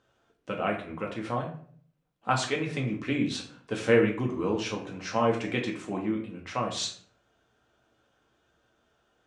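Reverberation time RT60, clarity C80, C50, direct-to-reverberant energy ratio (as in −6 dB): 0.55 s, 11.5 dB, 8.5 dB, −1.0 dB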